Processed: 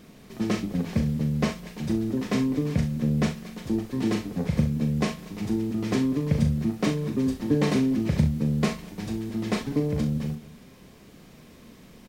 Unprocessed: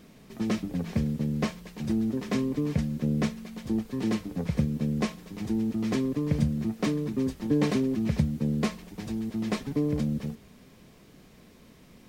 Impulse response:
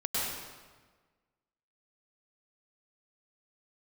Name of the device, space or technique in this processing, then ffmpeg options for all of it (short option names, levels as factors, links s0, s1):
ducked delay: -filter_complex "[0:a]asplit=3[s0][s1][s2];[s1]adelay=204,volume=0.447[s3];[s2]apad=whole_len=541883[s4];[s3][s4]sidechaincompress=threshold=0.01:ratio=8:attack=9:release=1020[s5];[s0][s5]amix=inputs=2:normalize=0,aecho=1:1:39|65:0.447|0.237,volume=1.33"